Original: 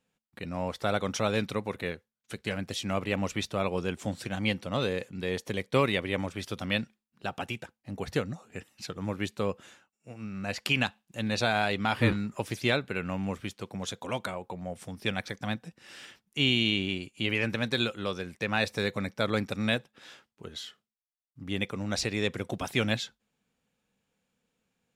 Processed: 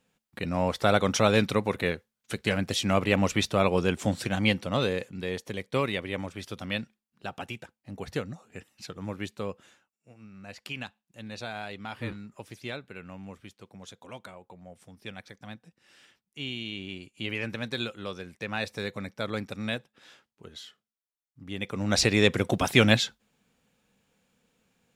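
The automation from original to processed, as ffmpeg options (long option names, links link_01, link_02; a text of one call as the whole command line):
ffmpeg -i in.wav -af "volume=24.5dB,afade=type=out:start_time=4.13:duration=1.33:silence=0.375837,afade=type=out:start_time=9.14:duration=1.14:silence=0.398107,afade=type=in:start_time=16.69:duration=0.54:silence=0.473151,afade=type=in:start_time=21.6:duration=0.44:silence=0.251189" out.wav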